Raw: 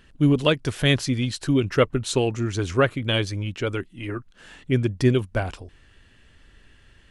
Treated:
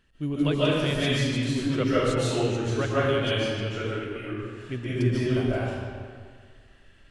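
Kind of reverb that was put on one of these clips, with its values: digital reverb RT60 1.9 s, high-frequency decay 0.75×, pre-delay 0.105 s, DRR -9.5 dB; gain -12 dB

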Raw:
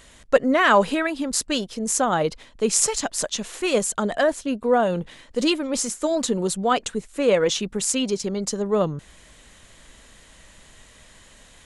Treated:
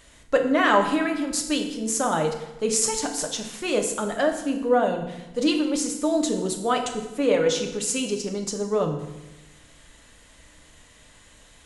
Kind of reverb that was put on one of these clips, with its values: FDN reverb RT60 1 s, low-frequency decay 1.3×, high-frequency decay 0.85×, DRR 3 dB; gain -4 dB

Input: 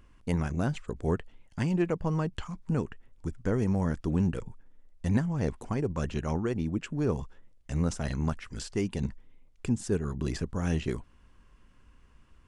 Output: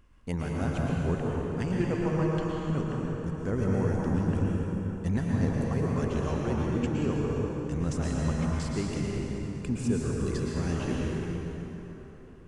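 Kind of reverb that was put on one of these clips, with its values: plate-style reverb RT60 3.9 s, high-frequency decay 0.65×, pre-delay 0.1 s, DRR -4 dB; gain -3.5 dB

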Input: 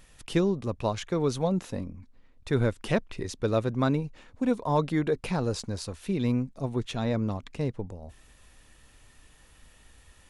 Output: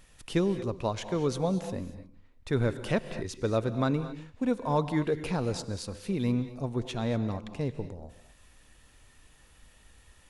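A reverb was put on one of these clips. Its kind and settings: non-linear reverb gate 0.26 s rising, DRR 11 dB; gain -2 dB

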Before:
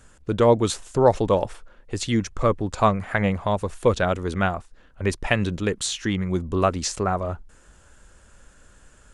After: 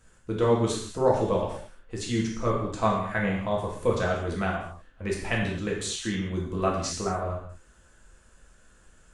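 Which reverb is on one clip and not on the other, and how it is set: non-linear reverb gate 0.26 s falling, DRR -3.5 dB; gain -9.5 dB

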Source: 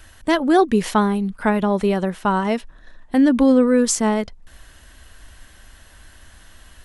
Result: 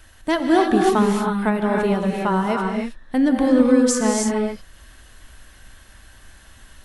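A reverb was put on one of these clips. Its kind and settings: non-linear reverb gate 0.34 s rising, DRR 0.5 dB; gain -3 dB

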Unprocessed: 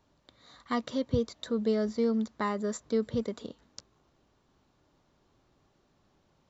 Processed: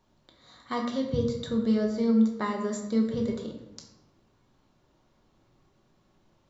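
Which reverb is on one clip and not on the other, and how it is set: shoebox room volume 240 m³, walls mixed, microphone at 1 m; gain -1 dB

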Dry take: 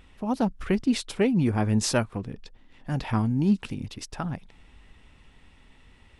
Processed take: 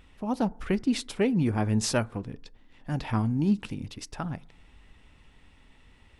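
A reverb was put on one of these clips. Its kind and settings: FDN reverb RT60 0.58 s, low-frequency decay 0.95×, high-frequency decay 0.3×, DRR 19.5 dB; gain -2 dB

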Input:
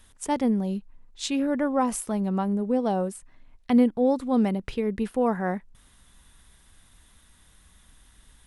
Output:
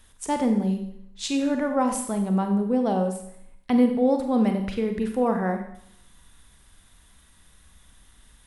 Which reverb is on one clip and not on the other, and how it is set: Schroeder reverb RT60 0.69 s, combs from 32 ms, DRR 5 dB

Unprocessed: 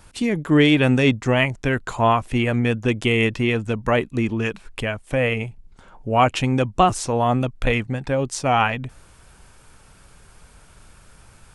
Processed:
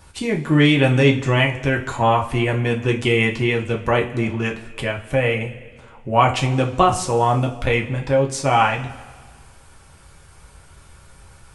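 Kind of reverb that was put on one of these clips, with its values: two-slope reverb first 0.26 s, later 1.7 s, from -18 dB, DRR 0 dB; gain -1 dB

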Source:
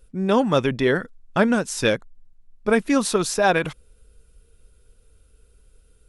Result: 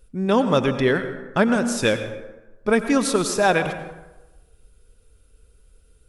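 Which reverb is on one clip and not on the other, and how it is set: plate-style reverb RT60 1.1 s, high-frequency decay 0.55×, pre-delay 80 ms, DRR 9.5 dB

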